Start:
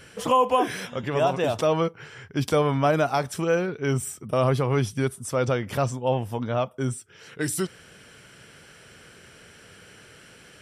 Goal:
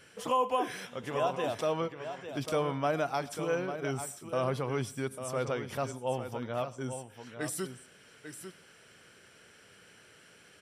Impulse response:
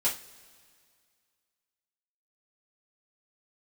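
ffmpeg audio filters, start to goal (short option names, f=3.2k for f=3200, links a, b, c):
-filter_complex "[0:a]lowshelf=f=130:g=-9.5,aecho=1:1:847:0.335,asplit=2[a][b];[1:a]atrim=start_sample=2205,adelay=94[c];[b][c]afir=irnorm=-1:irlink=0,volume=-28dB[d];[a][d]amix=inputs=2:normalize=0,volume=-8dB"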